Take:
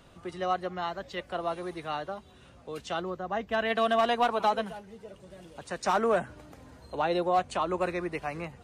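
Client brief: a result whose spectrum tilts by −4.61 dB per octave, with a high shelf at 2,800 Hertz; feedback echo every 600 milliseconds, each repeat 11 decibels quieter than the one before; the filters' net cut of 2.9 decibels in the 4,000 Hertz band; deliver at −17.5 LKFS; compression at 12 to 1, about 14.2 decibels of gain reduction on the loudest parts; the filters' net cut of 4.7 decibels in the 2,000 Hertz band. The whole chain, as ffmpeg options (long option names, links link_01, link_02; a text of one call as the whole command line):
ffmpeg -i in.wav -af "equalizer=frequency=2000:width_type=o:gain=-7.5,highshelf=frequency=2800:gain=5,equalizer=frequency=4000:width_type=o:gain=-4.5,acompressor=threshold=-36dB:ratio=12,aecho=1:1:600|1200|1800:0.282|0.0789|0.0221,volume=24dB" out.wav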